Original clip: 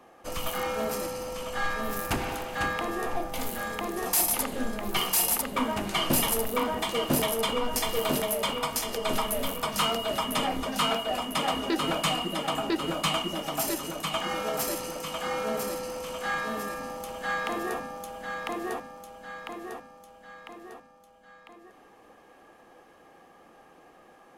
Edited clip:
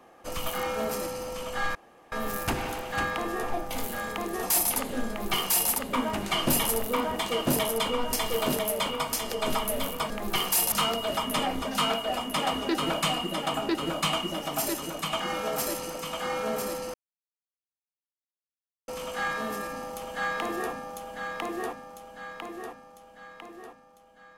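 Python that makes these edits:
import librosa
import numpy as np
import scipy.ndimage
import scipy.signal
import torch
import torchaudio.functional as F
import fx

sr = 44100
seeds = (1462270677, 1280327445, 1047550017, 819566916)

y = fx.edit(x, sr, fx.insert_room_tone(at_s=1.75, length_s=0.37),
    fx.duplicate(start_s=4.71, length_s=0.62, to_s=9.73),
    fx.insert_silence(at_s=15.95, length_s=1.94), tone=tone)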